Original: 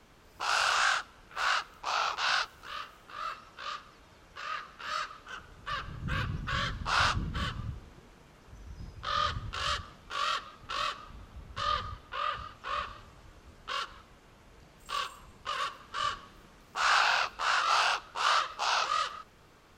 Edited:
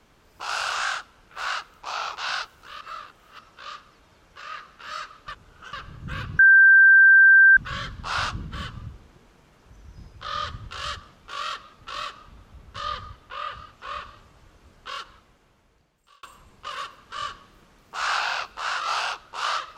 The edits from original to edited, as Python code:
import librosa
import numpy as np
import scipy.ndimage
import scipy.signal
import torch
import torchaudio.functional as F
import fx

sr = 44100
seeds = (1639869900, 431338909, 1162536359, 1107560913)

y = fx.edit(x, sr, fx.reverse_span(start_s=2.81, length_s=0.58),
    fx.reverse_span(start_s=5.28, length_s=0.45),
    fx.insert_tone(at_s=6.39, length_s=1.18, hz=1570.0, db=-9.5),
    fx.fade_out_span(start_s=13.83, length_s=1.22), tone=tone)